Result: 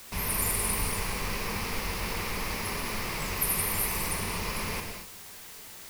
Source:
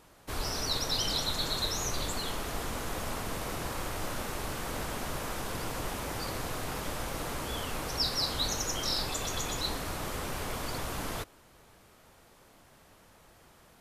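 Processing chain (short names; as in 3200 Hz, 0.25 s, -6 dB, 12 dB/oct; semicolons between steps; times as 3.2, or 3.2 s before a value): speed mistake 33 rpm record played at 78 rpm; ripple EQ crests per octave 0.86, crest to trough 8 dB; requantised 8-bit, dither triangular; non-linear reverb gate 0.27 s flat, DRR 2.5 dB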